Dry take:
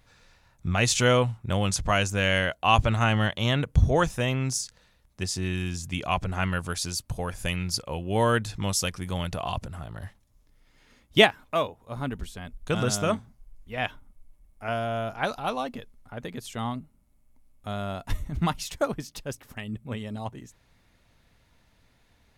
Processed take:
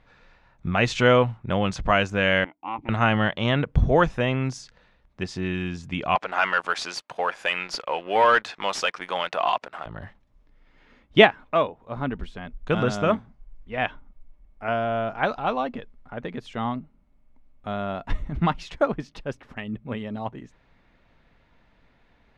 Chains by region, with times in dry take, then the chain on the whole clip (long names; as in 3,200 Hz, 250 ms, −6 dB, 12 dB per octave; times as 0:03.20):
0:02.44–0:02.89: formant filter u + parametric band 3,200 Hz −5.5 dB 1.2 octaves + highs frequency-modulated by the lows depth 0.25 ms
0:06.15–0:09.86: high-pass filter 670 Hz + leveller curve on the samples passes 2
whole clip: low-pass filter 2,600 Hz 12 dB per octave; parametric band 88 Hz −9 dB 0.94 octaves; level +4.5 dB